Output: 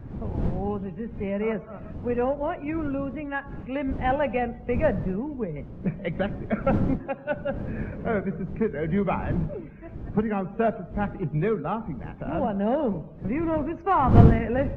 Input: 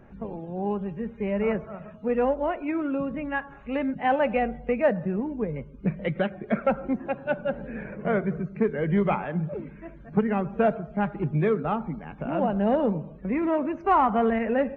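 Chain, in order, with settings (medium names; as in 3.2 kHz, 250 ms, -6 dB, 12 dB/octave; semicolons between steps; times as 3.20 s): wind noise 180 Hz -28 dBFS; trim -1.5 dB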